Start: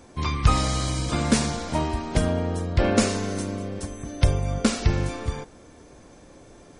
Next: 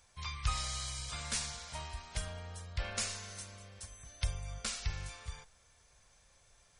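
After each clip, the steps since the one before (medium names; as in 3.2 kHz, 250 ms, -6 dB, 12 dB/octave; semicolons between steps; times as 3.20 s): amplifier tone stack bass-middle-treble 10-0-10; trim -7 dB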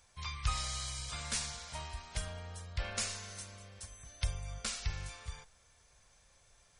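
no audible change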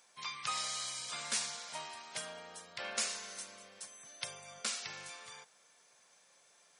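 Bessel high-pass 280 Hz, order 6; trim +1.5 dB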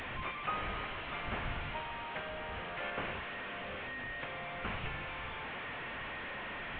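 one-bit delta coder 16 kbps, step -38.5 dBFS; wind noise 100 Hz -52 dBFS; trim +3 dB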